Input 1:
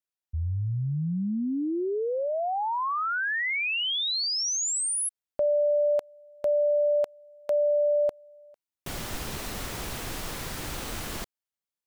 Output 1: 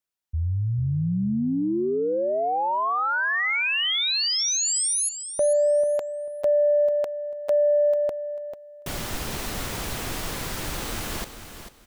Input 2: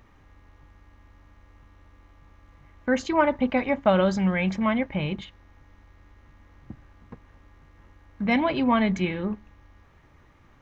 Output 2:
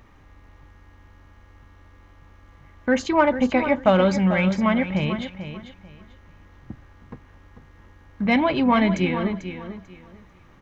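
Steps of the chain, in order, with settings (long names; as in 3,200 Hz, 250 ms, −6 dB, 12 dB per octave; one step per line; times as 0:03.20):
in parallel at −10.5 dB: soft clipping −19 dBFS
on the sum: repeating echo 443 ms, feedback 23%, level −10.5 dB
level +1.5 dB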